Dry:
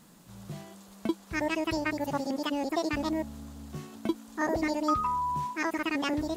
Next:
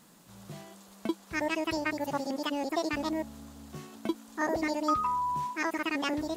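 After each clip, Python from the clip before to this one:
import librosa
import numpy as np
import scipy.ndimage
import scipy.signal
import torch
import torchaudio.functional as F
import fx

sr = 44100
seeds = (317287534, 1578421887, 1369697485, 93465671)

y = fx.low_shelf(x, sr, hz=180.0, db=-8.0)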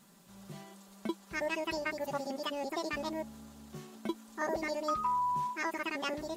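y = x + 0.54 * np.pad(x, (int(5.1 * sr / 1000.0), 0))[:len(x)]
y = y * 10.0 ** (-4.5 / 20.0)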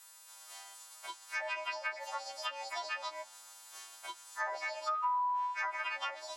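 y = fx.freq_snap(x, sr, grid_st=2)
y = scipy.signal.sosfilt(scipy.signal.butter(4, 760.0, 'highpass', fs=sr, output='sos'), y)
y = fx.env_lowpass_down(y, sr, base_hz=1600.0, full_db=-29.5)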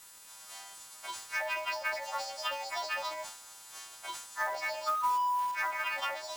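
y = fx.quant_float(x, sr, bits=2)
y = fx.dmg_crackle(y, sr, seeds[0], per_s=420.0, level_db=-51.0)
y = fx.sustainer(y, sr, db_per_s=75.0)
y = y * 10.0 ** (3.0 / 20.0)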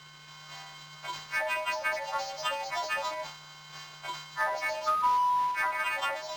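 y = np.interp(np.arange(len(x)), np.arange(len(x))[::4], x[::4])
y = y * 10.0 ** (4.0 / 20.0)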